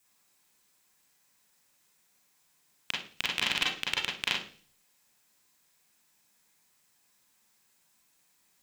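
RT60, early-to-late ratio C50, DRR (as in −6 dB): 0.40 s, 5.0 dB, −3.5 dB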